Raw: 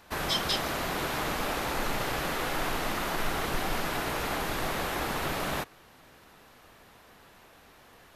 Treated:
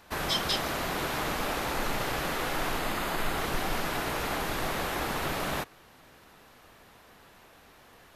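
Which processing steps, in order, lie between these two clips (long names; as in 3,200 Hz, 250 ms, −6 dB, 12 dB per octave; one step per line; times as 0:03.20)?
0:02.79–0:03.38: notch filter 5,700 Hz, Q 8.2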